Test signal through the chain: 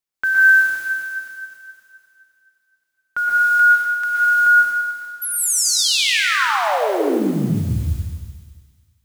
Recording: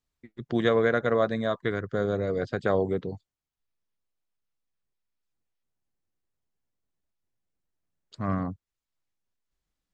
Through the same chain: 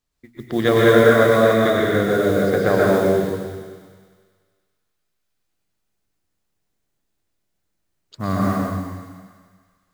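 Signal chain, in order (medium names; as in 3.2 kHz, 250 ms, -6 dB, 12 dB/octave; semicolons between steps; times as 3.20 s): hum notches 60/120/180/240 Hz; modulation noise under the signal 26 dB; feedback echo behind a high-pass 98 ms, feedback 72%, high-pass 1.9 kHz, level -9 dB; plate-style reverb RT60 1.5 s, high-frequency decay 0.95×, pre-delay 105 ms, DRR -4.5 dB; trim +5 dB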